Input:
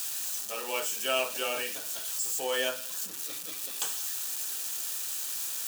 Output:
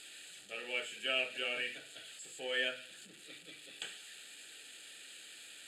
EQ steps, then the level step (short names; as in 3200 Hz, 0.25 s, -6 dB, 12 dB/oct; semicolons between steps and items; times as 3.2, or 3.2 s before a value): LPF 7600 Hz 24 dB/oct; dynamic EQ 1900 Hz, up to +7 dB, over -48 dBFS, Q 1.1; fixed phaser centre 2500 Hz, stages 4; -6.0 dB